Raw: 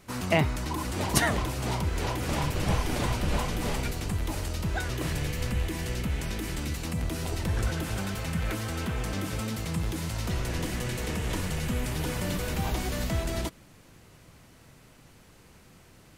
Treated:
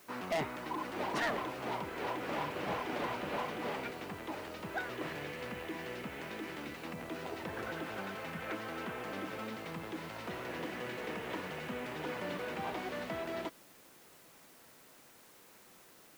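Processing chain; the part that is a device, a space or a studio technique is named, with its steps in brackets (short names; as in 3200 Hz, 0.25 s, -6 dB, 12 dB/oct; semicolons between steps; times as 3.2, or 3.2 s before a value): aircraft radio (BPF 320–2500 Hz; hard clip -26.5 dBFS, distortion -12 dB; white noise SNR 21 dB); gain -3 dB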